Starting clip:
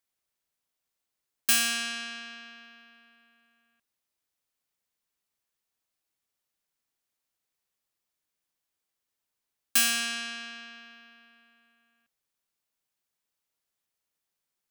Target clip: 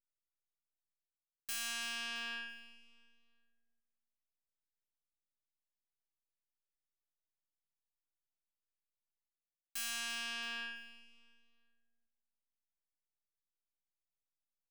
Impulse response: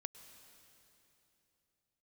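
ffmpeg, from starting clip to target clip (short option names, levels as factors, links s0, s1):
-af "aeval=exprs='if(lt(val(0),0),0.447*val(0),val(0))':c=same,anlmdn=0.0631,lowshelf=f=270:g=-10.5,areverse,acompressor=threshold=0.00224:ratio=8,areverse,aecho=1:1:335|670|1005:0.141|0.0438|0.0136,volume=4.47"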